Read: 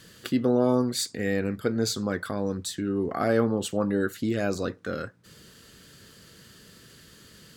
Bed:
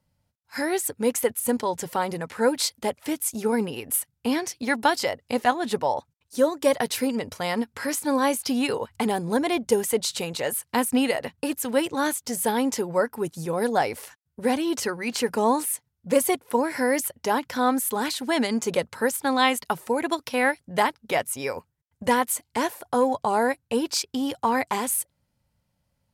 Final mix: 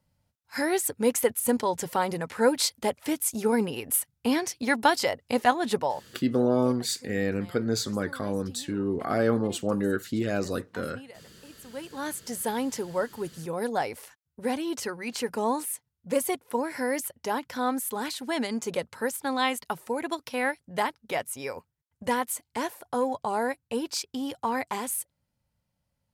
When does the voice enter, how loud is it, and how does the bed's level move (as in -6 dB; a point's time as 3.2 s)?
5.90 s, -1.0 dB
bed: 5.79 s -0.5 dB
6.42 s -23.5 dB
11.48 s -23.5 dB
12.18 s -5.5 dB